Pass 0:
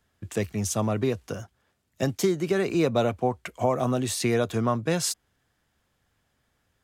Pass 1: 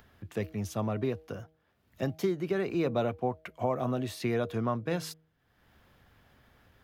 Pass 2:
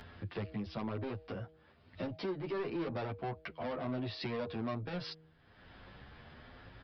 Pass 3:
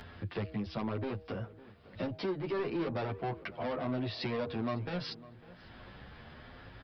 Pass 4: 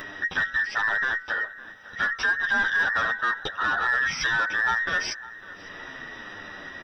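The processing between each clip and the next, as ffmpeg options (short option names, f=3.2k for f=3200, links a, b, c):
-af "equalizer=f=7.9k:w=0.98:g=-14,acompressor=mode=upward:threshold=-41dB:ratio=2.5,bandreject=f=158.4:t=h:w=4,bandreject=f=316.8:t=h:w=4,bandreject=f=475.2:t=h:w=4,bandreject=f=633.6:t=h:w=4,bandreject=f=792:t=h:w=4,volume=-5.5dB"
-filter_complex "[0:a]aresample=11025,asoftclip=type=tanh:threshold=-32.5dB,aresample=44100,acompressor=threshold=-50dB:ratio=2.5,asplit=2[a][b];[b]adelay=9.7,afreqshift=1.1[c];[a][c]amix=inputs=2:normalize=1,volume=11dB"
-filter_complex "[0:a]asplit=2[a][b];[b]adelay=553,lowpass=f=2.5k:p=1,volume=-18.5dB,asplit=2[c][d];[d]adelay=553,lowpass=f=2.5k:p=1,volume=0.4,asplit=2[e][f];[f]adelay=553,lowpass=f=2.5k:p=1,volume=0.4[g];[a][c][e][g]amix=inputs=4:normalize=0,volume=3dB"
-filter_complex "[0:a]afftfilt=real='real(if(between(b,1,1012),(2*floor((b-1)/92)+1)*92-b,b),0)':imag='imag(if(between(b,1,1012),(2*floor((b-1)/92)+1)*92-b,b),0)*if(between(b,1,1012),-1,1)':win_size=2048:overlap=0.75,asplit=2[a][b];[b]asoftclip=type=tanh:threshold=-32.5dB,volume=-9dB[c];[a][c]amix=inputs=2:normalize=0,volume=8.5dB"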